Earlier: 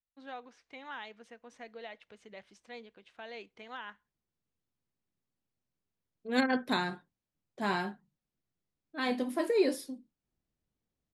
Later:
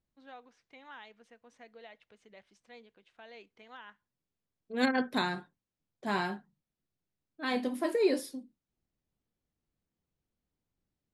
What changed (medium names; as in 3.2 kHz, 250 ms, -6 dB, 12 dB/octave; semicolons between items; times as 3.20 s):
first voice -6.0 dB; second voice: entry -1.55 s